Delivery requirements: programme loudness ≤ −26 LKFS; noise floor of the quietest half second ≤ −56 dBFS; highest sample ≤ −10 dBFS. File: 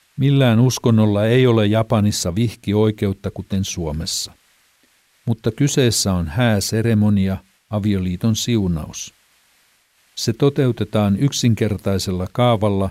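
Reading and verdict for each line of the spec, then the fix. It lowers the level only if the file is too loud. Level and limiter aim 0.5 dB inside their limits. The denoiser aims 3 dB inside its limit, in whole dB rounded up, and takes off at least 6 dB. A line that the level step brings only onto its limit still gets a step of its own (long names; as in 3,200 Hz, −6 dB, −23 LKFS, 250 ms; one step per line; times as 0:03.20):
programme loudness −18.5 LKFS: out of spec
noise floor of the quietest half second −59 dBFS: in spec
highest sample −5.0 dBFS: out of spec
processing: level −8 dB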